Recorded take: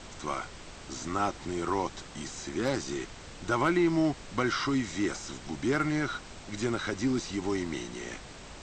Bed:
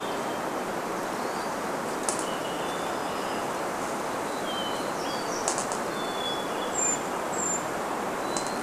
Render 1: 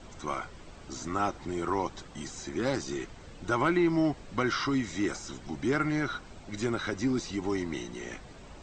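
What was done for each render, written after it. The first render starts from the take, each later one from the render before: denoiser 9 dB, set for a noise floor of -47 dBFS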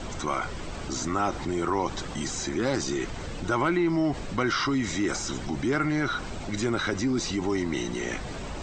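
fast leveller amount 50%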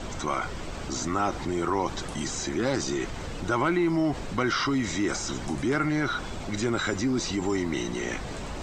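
add bed -18.5 dB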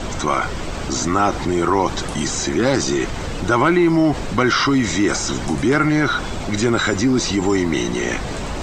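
gain +9.5 dB; limiter -3 dBFS, peak gain reduction 1 dB

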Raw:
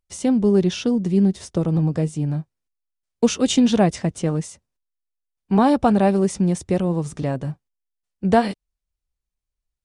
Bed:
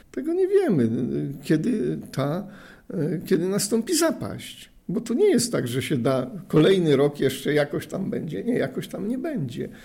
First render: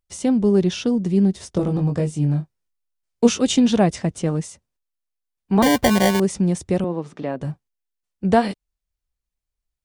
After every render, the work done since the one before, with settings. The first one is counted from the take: 1.53–3.41 doubler 21 ms -4.5 dB; 5.62–6.2 sample-rate reducer 1300 Hz; 6.84–7.41 three-band isolator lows -23 dB, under 190 Hz, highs -19 dB, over 4100 Hz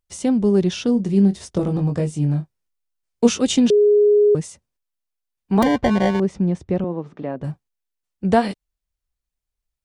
0.86–1.44 doubler 25 ms -10 dB; 3.7–4.35 bleep 415 Hz -10.5 dBFS; 5.63–7.44 tape spacing loss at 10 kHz 23 dB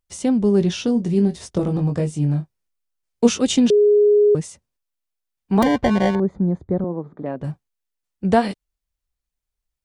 0.59–1.47 doubler 18 ms -8.5 dB; 6.15–7.26 running mean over 16 samples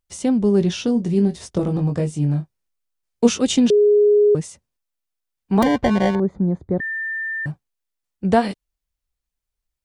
6.8–7.46 bleep 1790 Hz -23 dBFS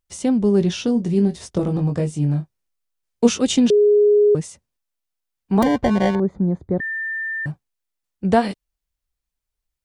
5.52–6.01 bell 2600 Hz -3 dB 2.1 oct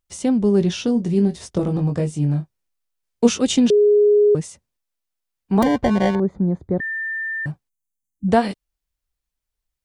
7.69–8.28 spectral delete 290–5900 Hz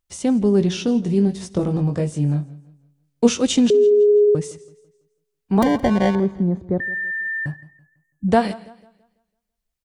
feedback echo 67 ms, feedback 56%, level -24 dB; warbling echo 0.166 s, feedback 36%, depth 75 cents, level -20 dB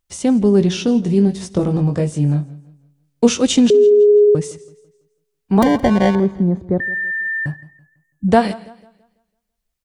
gain +3.5 dB; limiter -2 dBFS, peak gain reduction 2 dB

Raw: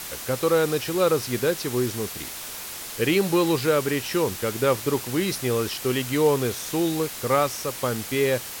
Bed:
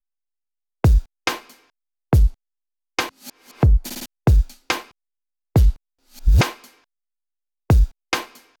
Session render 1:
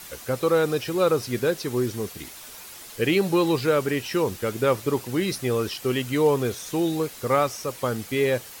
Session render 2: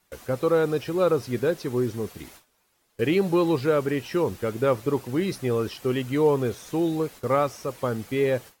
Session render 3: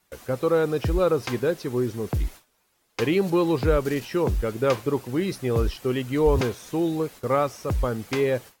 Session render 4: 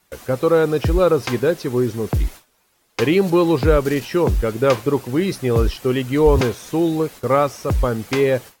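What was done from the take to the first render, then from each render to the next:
denoiser 8 dB, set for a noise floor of -36 dBFS
gate with hold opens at -29 dBFS; high shelf 2100 Hz -8.5 dB
add bed -11.5 dB
gain +6 dB

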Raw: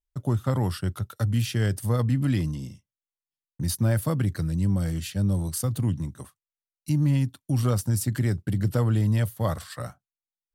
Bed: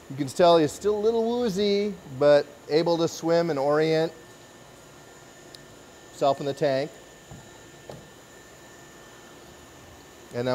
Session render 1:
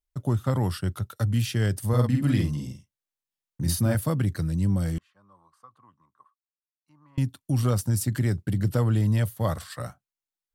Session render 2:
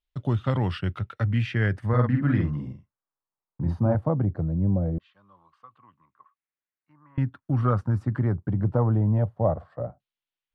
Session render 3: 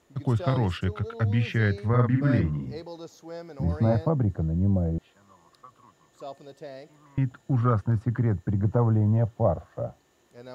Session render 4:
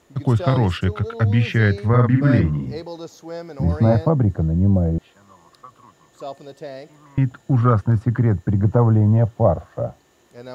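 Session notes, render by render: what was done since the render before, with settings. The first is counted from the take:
1.88–3.95 doubler 48 ms -3.5 dB; 4.98–7.18 band-pass 1100 Hz, Q 12
LFO low-pass saw down 0.2 Hz 580–3500 Hz
add bed -17 dB
gain +7 dB; limiter -3 dBFS, peak gain reduction 2 dB

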